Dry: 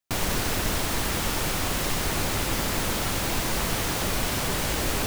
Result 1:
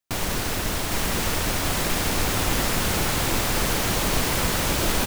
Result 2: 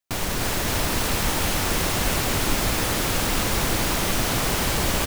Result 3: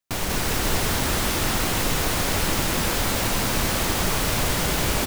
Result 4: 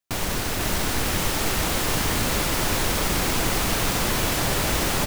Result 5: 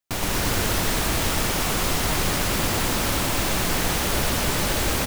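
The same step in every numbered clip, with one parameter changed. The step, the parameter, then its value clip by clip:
bouncing-ball delay, first gap: 810, 300, 190, 500, 120 milliseconds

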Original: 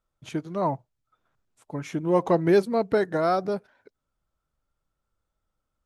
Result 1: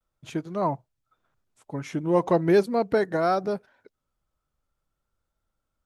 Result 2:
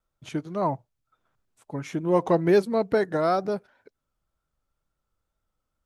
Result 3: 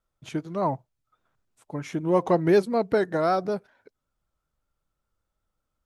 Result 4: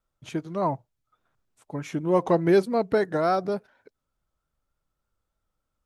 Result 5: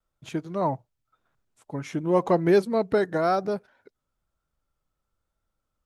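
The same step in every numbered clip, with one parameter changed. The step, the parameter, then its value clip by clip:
pitch vibrato, speed: 0.41, 2.1, 5.2, 3.4, 0.97 Hertz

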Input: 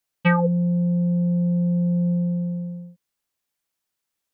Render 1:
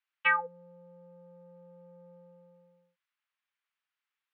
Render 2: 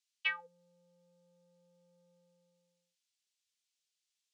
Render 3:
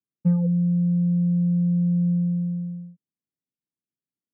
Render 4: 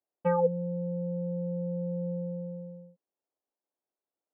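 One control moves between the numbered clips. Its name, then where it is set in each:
flat-topped band-pass, frequency: 1,800, 4,700, 190, 480 Hertz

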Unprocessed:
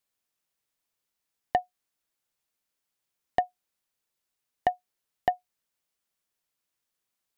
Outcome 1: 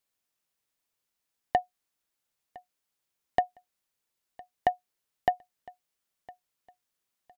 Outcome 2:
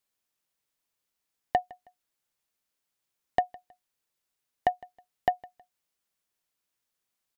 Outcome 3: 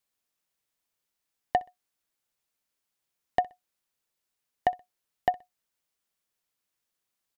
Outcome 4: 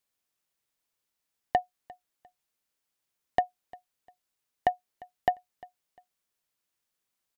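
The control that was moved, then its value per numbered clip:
repeating echo, delay time: 1,009, 159, 63, 350 milliseconds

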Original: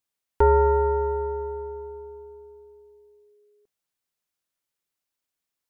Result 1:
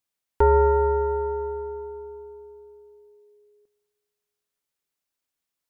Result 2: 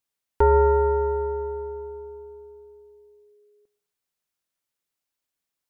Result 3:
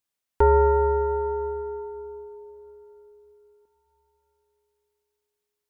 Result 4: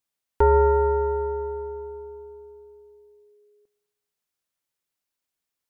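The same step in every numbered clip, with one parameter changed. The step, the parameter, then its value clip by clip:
dense smooth reverb, RT60: 2.4, 0.51, 5.1, 1.1 seconds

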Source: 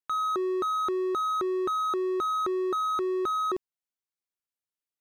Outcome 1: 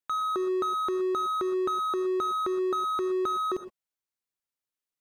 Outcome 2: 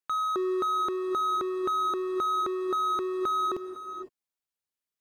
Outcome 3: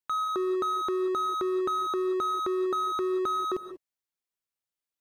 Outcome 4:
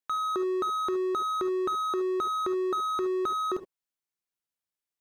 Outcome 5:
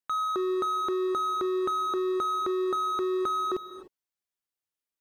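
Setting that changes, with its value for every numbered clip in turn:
reverb whose tail is shaped and stops, gate: 140, 530, 210, 90, 320 milliseconds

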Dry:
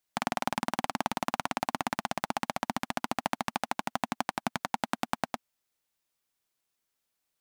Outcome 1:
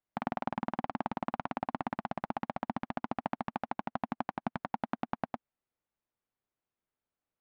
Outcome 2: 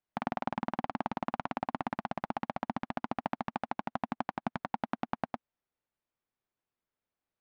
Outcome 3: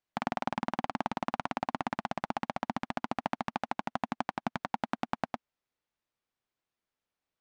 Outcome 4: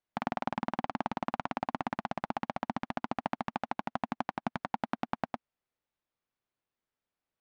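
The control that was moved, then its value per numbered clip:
head-to-tape spacing loss, at 10 kHz: 45, 37, 20, 29 decibels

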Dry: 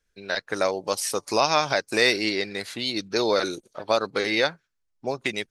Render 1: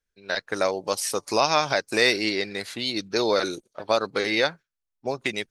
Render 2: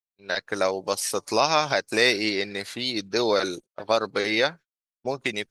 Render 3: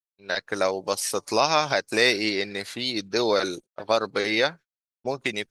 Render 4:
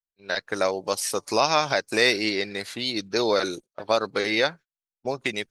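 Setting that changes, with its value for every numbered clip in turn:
noise gate, range: −9, −43, −58, −29 decibels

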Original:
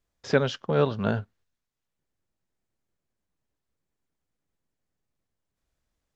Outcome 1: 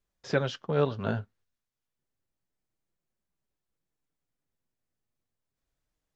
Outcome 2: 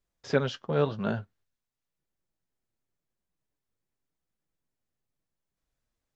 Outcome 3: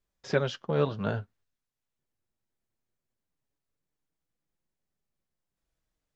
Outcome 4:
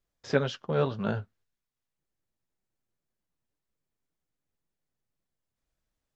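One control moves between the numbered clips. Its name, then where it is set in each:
flanger, speed: 0.3, 0.92, 0.2, 1.9 Hertz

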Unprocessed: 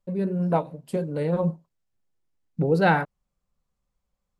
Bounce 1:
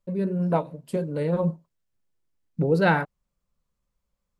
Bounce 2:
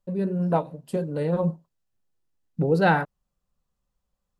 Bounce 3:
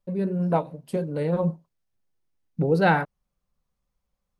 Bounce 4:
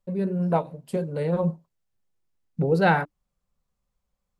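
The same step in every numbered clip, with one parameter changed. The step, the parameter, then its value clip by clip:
notch filter, centre frequency: 770, 2,200, 7,400, 300 Hertz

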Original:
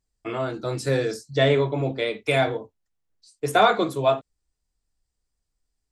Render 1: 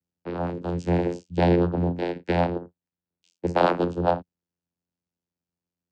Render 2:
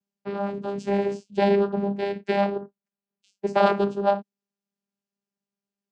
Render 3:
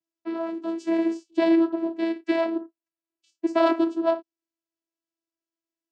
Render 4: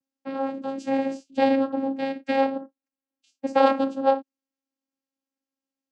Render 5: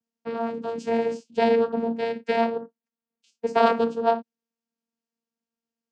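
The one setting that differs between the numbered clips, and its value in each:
channel vocoder, frequency: 87, 200, 330, 270, 230 Hertz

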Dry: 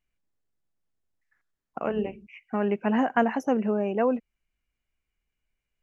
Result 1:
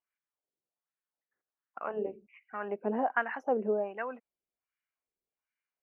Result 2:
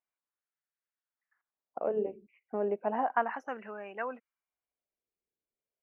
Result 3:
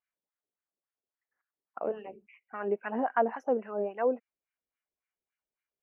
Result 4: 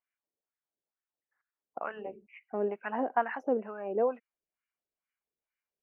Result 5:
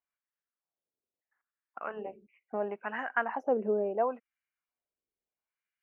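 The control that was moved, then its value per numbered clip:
LFO wah, speed: 1.3, 0.33, 3.6, 2.2, 0.74 Hertz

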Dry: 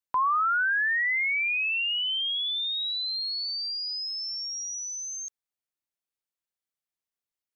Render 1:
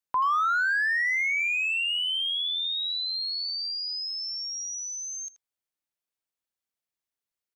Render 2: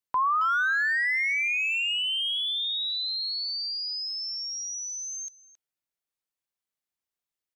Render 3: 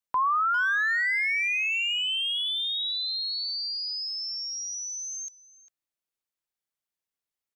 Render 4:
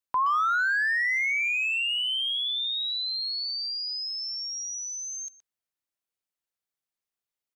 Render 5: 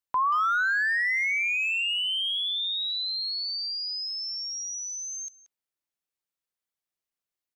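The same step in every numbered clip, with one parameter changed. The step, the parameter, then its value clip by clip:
far-end echo of a speakerphone, delay time: 80, 270, 400, 120, 180 milliseconds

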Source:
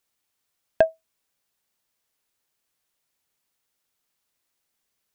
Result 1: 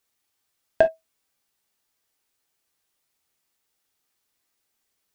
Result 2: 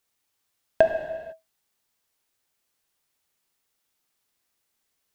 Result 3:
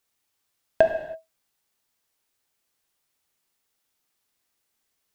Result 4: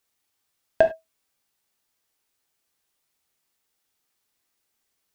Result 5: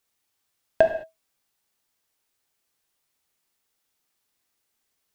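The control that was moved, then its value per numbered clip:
reverb whose tail is shaped and stops, gate: 80, 530, 350, 120, 240 milliseconds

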